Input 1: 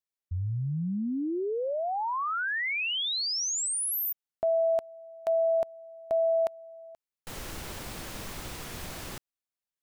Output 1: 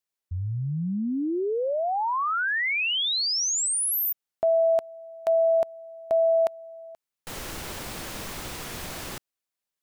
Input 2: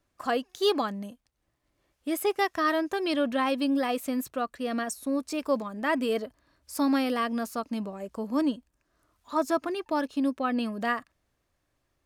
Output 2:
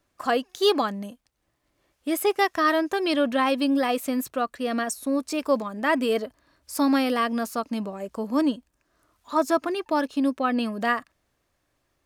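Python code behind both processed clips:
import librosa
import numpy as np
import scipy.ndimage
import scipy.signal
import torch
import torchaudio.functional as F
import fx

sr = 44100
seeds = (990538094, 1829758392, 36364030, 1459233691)

y = fx.low_shelf(x, sr, hz=160.0, db=-4.5)
y = F.gain(torch.from_numpy(y), 4.5).numpy()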